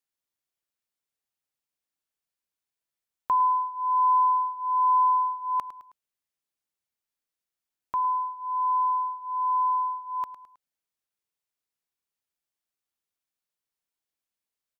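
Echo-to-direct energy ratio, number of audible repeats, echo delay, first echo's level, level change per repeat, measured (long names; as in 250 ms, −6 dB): −13.0 dB, 3, 106 ms, −14.0 dB, −7.0 dB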